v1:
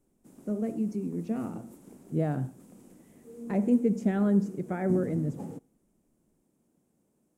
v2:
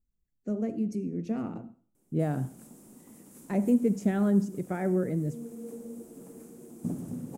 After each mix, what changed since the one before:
background: entry +1.95 s
master: add high-shelf EQ 6,000 Hz +9.5 dB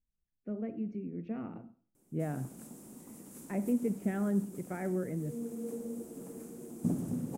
speech: add transistor ladder low-pass 3,100 Hz, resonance 30%
background: send +10.5 dB

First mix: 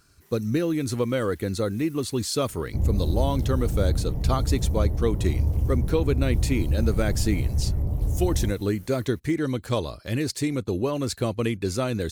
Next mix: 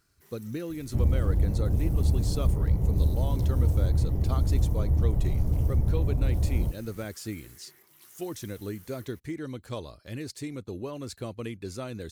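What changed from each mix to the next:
speech −10.5 dB
second sound: entry −1.80 s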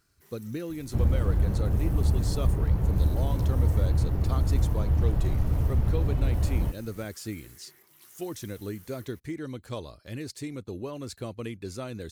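second sound: remove Bessel low-pass filter 670 Hz, order 8

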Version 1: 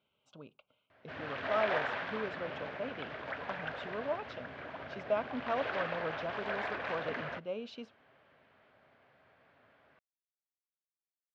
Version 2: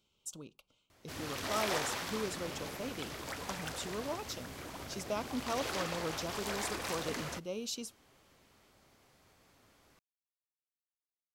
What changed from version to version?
master: remove loudspeaker in its box 120–3,000 Hz, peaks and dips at 190 Hz −4 dB, 330 Hz −6 dB, 630 Hz +7 dB, 1,600 Hz +7 dB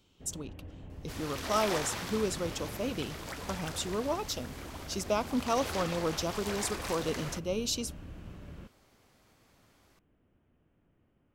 speech +7.0 dB
first sound: unmuted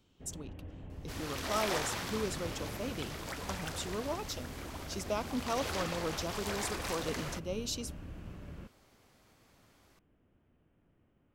speech −5.0 dB

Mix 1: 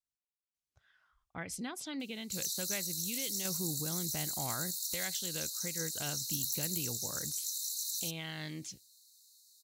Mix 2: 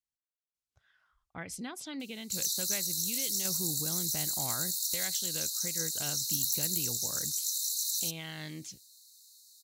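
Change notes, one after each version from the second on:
background +5.0 dB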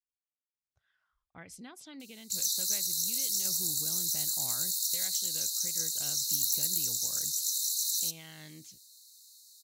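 speech −7.5 dB
background: send +11.0 dB

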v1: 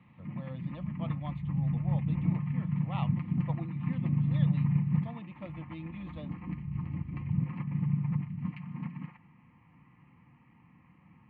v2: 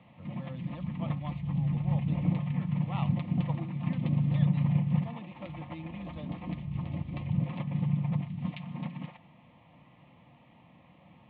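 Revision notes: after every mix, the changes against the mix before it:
background: remove phaser with its sweep stopped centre 1,500 Hz, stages 4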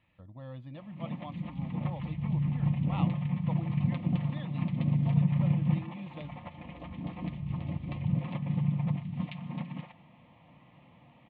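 background: entry +0.75 s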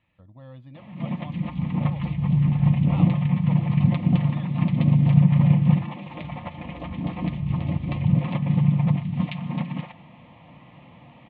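background +9.5 dB

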